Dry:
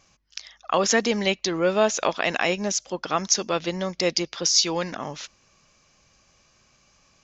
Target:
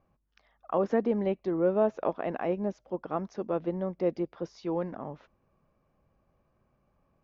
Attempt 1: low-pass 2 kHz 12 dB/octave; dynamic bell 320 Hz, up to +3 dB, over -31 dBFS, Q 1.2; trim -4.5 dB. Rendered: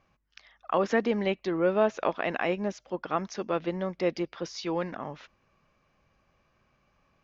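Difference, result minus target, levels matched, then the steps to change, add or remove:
2 kHz band +10.0 dB
change: low-pass 840 Hz 12 dB/octave

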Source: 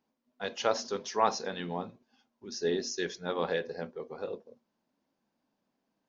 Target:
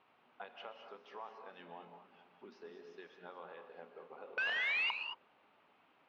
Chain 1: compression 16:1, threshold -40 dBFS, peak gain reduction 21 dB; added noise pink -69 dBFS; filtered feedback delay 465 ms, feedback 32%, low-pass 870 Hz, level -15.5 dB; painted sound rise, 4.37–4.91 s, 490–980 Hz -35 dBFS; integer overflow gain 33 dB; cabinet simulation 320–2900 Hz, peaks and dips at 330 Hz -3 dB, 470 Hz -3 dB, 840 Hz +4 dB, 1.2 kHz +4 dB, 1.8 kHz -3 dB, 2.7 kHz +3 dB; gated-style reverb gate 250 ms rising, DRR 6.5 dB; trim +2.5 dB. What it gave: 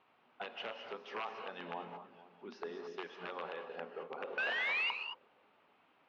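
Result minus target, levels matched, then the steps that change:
compression: peak gain reduction -8.5 dB
change: compression 16:1, threshold -49 dBFS, peak gain reduction 29.5 dB

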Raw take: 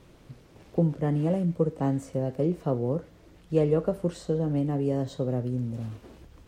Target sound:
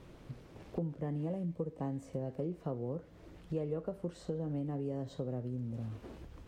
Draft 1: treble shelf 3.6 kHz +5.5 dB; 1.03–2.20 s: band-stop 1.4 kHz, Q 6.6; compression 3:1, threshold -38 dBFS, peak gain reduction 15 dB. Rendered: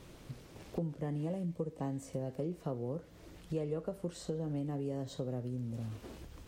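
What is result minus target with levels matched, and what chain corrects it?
8 kHz band +9.0 dB
treble shelf 3.6 kHz -6 dB; 1.03–2.20 s: band-stop 1.4 kHz, Q 6.6; compression 3:1, threshold -38 dBFS, peak gain reduction 15 dB

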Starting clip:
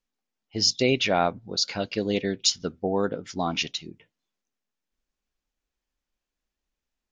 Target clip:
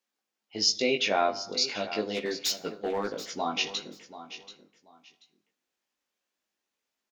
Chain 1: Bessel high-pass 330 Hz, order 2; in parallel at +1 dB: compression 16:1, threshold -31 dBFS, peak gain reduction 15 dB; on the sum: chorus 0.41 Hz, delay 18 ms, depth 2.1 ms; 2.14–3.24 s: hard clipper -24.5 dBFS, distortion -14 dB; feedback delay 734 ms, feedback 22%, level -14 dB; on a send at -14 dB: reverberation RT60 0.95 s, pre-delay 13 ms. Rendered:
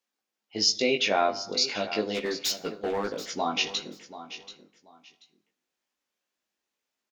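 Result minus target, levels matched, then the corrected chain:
compression: peak gain reduction -10 dB
Bessel high-pass 330 Hz, order 2; in parallel at +1 dB: compression 16:1, threshold -41.5 dBFS, peak gain reduction 25 dB; on the sum: chorus 0.41 Hz, delay 18 ms, depth 2.1 ms; 2.14–3.24 s: hard clipper -24.5 dBFS, distortion -15 dB; feedback delay 734 ms, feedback 22%, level -14 dB; on a send at -14 dB: reverberation RT60 0.95 s, pre-delay 13 ms

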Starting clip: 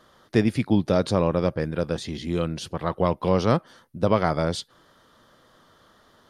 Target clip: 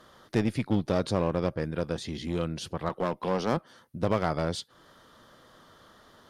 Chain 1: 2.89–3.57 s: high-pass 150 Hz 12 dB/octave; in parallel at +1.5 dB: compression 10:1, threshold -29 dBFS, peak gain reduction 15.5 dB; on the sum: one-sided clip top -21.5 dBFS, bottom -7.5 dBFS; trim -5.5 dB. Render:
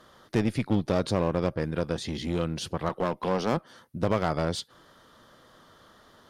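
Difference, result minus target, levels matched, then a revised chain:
compression: peak gain reduction -9.5 dB
2.89–3.57 s: high-pass 150 Hz 12 dB/octave; in parallel at +1.5 dB: compression 10:1, threshold -39.5 dBFS, peak gain reduction 25 dB; on the sum: one-sided clip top -21.5 dBFS, bottom -7.5 dBFS; trim -5.5 dB

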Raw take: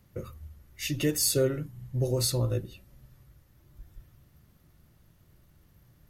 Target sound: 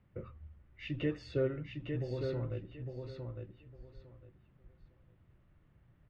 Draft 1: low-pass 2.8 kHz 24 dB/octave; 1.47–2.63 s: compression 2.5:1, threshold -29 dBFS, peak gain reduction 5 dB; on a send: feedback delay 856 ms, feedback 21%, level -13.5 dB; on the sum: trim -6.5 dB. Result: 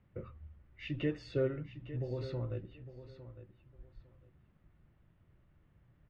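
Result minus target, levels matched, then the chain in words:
echo-to-direct -8 dB
low-pass 2.8 kHz 24 dB/octave; 1.47–2.63 s: compression 2.5:1, threshold -29 dBFS, peak gain reduction 5 dB; on a send: feedback delay 856 ms, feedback 21%, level -5.5 dB; on the sum: trim -6.5 dB

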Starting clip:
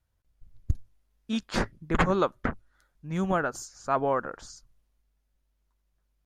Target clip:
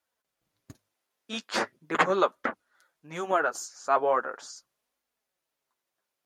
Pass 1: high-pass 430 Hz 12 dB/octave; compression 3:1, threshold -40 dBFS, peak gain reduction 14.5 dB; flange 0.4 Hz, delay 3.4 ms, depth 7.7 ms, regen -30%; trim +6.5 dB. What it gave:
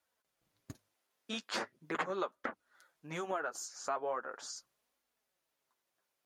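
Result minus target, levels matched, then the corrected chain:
compression: peak gain reduction +14.5 dB
high-pass 430 Hz 12 dB/octave; flange 0.4 Hz, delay 3.4 ms, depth 7.7 ms, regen -30%; trim +6.5 dB

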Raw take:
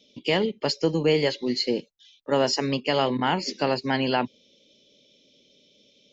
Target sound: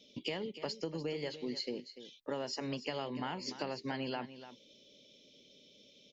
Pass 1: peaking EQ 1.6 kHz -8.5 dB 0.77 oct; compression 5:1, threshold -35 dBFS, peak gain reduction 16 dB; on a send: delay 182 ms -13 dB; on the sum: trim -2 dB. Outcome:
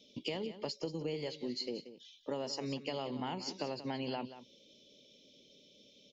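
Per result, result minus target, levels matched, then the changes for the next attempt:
echo 111 ms early; 2 kHz band -3.5 dB
change: delay 293 ms -13 dB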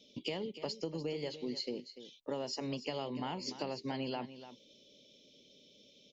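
2 kHz band -3.5 dB
remove: peaking EQ 1.6 kHz -8.5 dB 0.77 oct

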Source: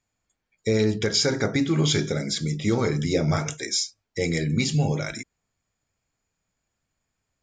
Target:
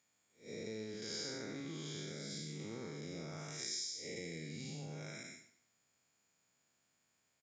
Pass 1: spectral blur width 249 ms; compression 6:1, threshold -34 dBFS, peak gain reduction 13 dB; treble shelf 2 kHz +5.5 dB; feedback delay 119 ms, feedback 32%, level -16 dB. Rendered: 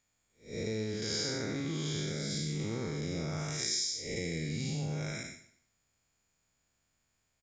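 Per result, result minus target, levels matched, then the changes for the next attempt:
compression: peak gain reduction -8.5 dB; 125 Hz band +3.0 dB
change: compression 6:1, threshold -44 dBFS, peak gain reduction 21.5 dB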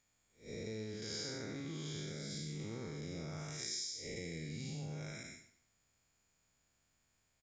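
125 Hz band +3.0 dB
add after compression: high-pass 160 Hz 12 dB/octave

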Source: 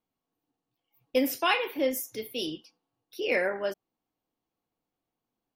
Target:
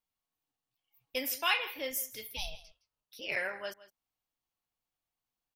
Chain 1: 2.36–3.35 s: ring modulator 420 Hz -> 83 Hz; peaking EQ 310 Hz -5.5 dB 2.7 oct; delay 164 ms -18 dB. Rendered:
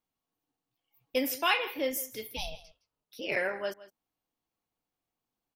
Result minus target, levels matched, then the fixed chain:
250 Hz band +7.5 dB
2.36–3.35 s: ring modulator 420 Hz -> 83 Hz; peaking EQ 310 Hz -16 dB 2.7 oct; delay 164 ms -18 dB

